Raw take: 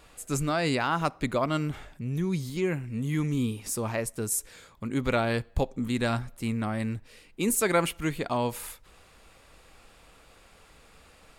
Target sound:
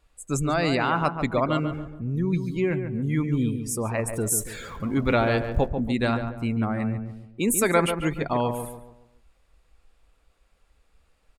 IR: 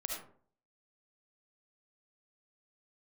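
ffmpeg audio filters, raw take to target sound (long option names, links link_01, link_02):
-filter_complex "[0:a]asettb=1/sr,asplit=3[link_01][link_02][link_03];[link_01]atrim=end=4.094[link_04];[link_02]atrim=start=4.09:end=5.68,asetpts=PTS-STARTPTS,afade=type=in:duration=0.004:curve=qsin,afade=type=out:start_time=1.586:duration=0.004:curve=qsin,aeval=exprs='val(0)+0.5*0.0188*sgn(val(0))':channel_layout=same[link_05];[link_03]atrim=start=5.676[link_06];[link_04][link_05]acrossfade=duration=0.004:curve1=hsin:curve2=qsin[link_07];[link_07][link_06]acrossfade=duration=0.004:curve1=qsin:curve2=hsin,afftdn=noise_reduction=18:noise_floor=-40,asplit=2[link_08][link_09];[link_09]adelay=141,lowpass=frequency=1600:poles=1,volume=-7dB,asplit=2[link_10][link_11];[link_11]adelay=141,lowpass=frequency=1600:poles=1,volume=0.4,asplit=2[link_12][link_13];[link_13]adelay=141,lowpass=frequency=1600:poles=1,volume=0.4,asplit=2[link_14][link_15];[link_15]adelay=141,lowpass=frequency=1600:poles=1,volume=0.4,asplit=2[link_16][link_17];[link_17]adelay=141,lowpass=frequency=1600:poles=1,volume=0.4[link_18];[link_08][link_10][link_12][link_14][link_16][link_18]amix=inputs=6:normalize=0,volume=3dB"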